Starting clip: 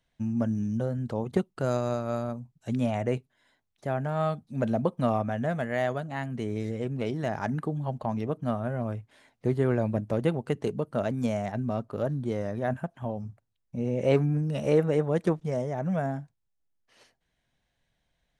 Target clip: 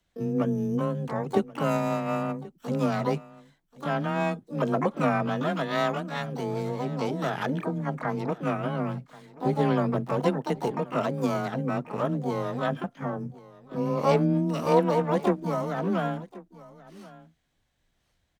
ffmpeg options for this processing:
-filter_complex "[0:a]asplit=3[a][b][c];[b]asetrate=66075,aresample=44100,atempo=0.66742,volume=-11dB[d];[c]asetrate=88200,aresample=44100,atempo=0.5,volume=-5dB[e];[a][d][e]amix=inputs=3:normalize=0,aecho=1:1:1082:0.1,afreqshift=20"

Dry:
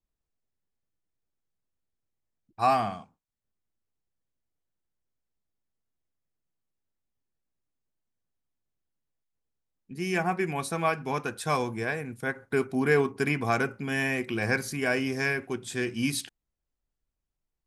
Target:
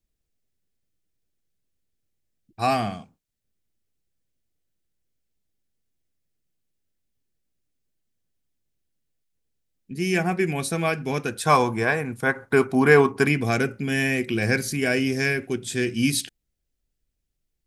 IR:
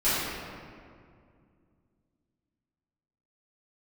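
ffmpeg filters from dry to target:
-af "asetnsamples=n=441:p=0,asendcmd='11.45 equalizer g 4;13.27 equalizer g -12',equalizer=f=1k:w=1.3:g=-10.5,volume=7dB"

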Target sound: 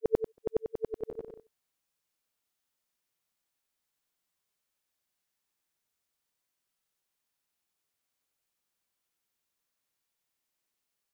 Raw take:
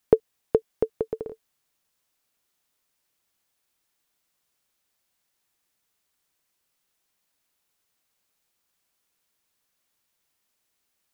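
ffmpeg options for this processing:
-af "afftfilt=real='re':imag='-im':win_size=8192:overlap=0.75,volume=-3.5dB"

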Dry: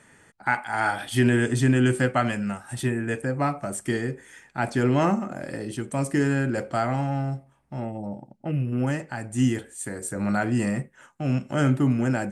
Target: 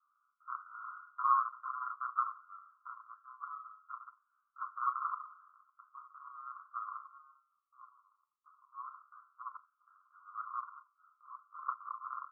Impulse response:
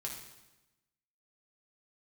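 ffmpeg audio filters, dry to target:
-filter_complex "[1:a]atrim=start_sample=2205,asetrate=79380,aresample=44100[a];[0:a][a]afir=irnorm=-1:irlink=0,aeval=exprs='0.355*(cos(1*acos(clip(val(0)/0.355,-1,1)))-cos(1*PI/2))+0.0708*(cos(7*acos(clip(val(0)/0.355,-1,1)))-cos(7*PI/2))+0.0126*(cos(8*acos(clip(val(0)/0.355,-1,1)))-cos(8*PI/2))':c=same,asuperpass=centerf=1200:order=12:qfactor=3.3,volume=6dB"

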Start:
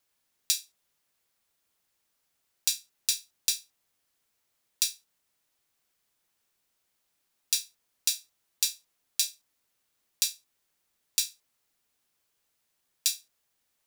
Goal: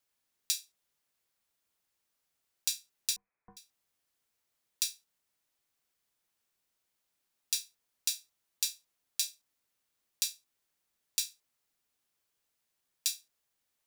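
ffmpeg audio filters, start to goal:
-filter_complex "[0:a]asettb=1/sr,asplit=3[a][b][c];[a]atrim=end=3.164[d];[b]atrim=start=3.16:end=3.57,asetpts=PTS-STARTPTS,afade=t=in:d=0.004:c=qsin,afade=t=out:st=0.406:d=0.004:c=qsin,lowpass=f=2.2k:t=q:w=0.5098,lowpass=f=2.2k:t=q:w=0.6013,lowpass=f=2.2k:t=q:w=0.9,lowpass=f=2.2k:t=q:w=2.563,afreqshift=-2600[e];[c]atrim=start=3.566[f];[d][e]acrossfade=d=0.004:c1=hsin:c2=qsin[g];[g][f]acrossfade=d=0.004:c1=qsin:c2=hsin,volume=-5dB"

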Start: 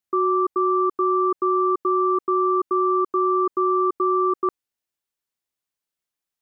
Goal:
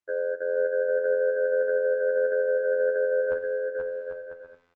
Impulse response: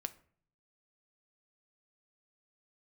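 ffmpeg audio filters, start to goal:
-filter_complex "[0:a]lowshelf=f=80:g=-4.5,areverse,acompressor=mode=upward:threshold=-25dB:ratio=2.5,areverse,lowpass=1k,equalizer=f=780:t=o:w=0.25:g=-4[a];[1:a]atrim=start_sample=2205[b];[a][b]afir=irnorm=-1:irlink=0,asetrate=59535,aresample=44100,afftfilt=real='hypot(re,im)*cos(PI*b)':imag='0':win_size=2048:overlap=0.75,tremolo=f=88:d=0.889,aecho=1:1:480|792|994.8|1127|1212:0.631|0.398|0.251|0.158|0.1,volume=3dB" -ar 48000 -c:a libopus -b:a 24k

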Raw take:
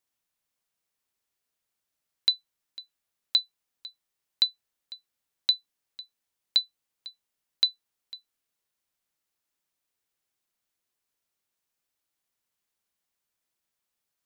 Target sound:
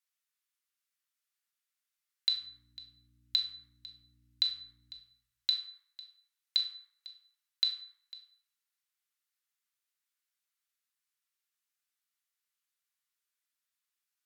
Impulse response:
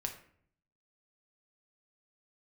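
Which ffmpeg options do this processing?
-filter_complex "[0:a]highpass=f=1.2k:w=0.5412,highpass=f=1.2k:w=1.3066,asettb=1/sr,asplit=3[a][b][c];[a]atrim=end=2.344[d];[b]atrim=start=2.34:end=4.94,asetpts=PTS-STARTPTS,afade=t=in:d=0.004:c=qsin,afade=t=out:st=2.596:d=0.004:c=qsin,aeval=exprs='val(0)+0.000562*(sin(2*PI*60*n/s)+sin(2*PI*2*60*n/s)/2+sin(2*PI*3*60*n/s)/3+sin(2*PI*4*60*n/s)/4+sin(2*PI*5*60*n/s)/5)':c=same[e];[c]atrim=start=4.936[f];[d][e]acrossfade=d=0.004:c1=hsin:c2=qsin[g];[g][f]acrossfade=d=0.004:c1=qsin:c2=hsin[h];[1:a]atrim=start_sample=2205,asetrate=33957,aresample=44100[i];[h][i]afir=irnorm=-1:irlink=0,volume=-4.5dB"

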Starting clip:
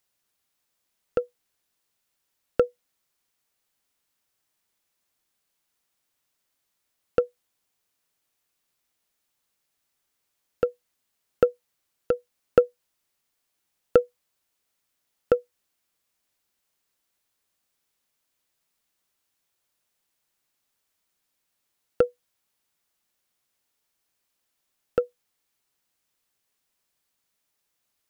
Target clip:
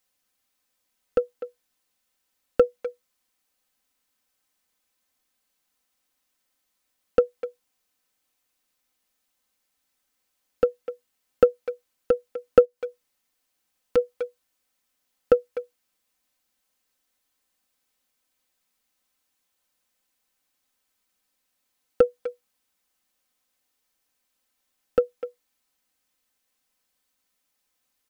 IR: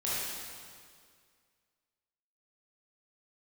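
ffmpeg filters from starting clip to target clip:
-filter_complex "[0:a]asplit=2[a][b];[b]adelay=250,highpass=300,lowpass=3.4k,asoftclip=type=hard:threshold=-13.5dB,volume=-12dB[c];[a][c]amix=inputs=2:normalize=0,asplit=3[d][e][f];[d]afade=t=out:st=12.64:d=0.02[g];[e]acompressor=threshold=-28dB:ratio=6,afade=t=in:st=12.64:d=0.02,afade=t=out:st=13.96:d=0.02[h];[f]afade=t=in:st=13.96:d=0.02[i];[g][h][i]amix=inputs=3:normalize=0,aecho=1:1:3.9:0.59"

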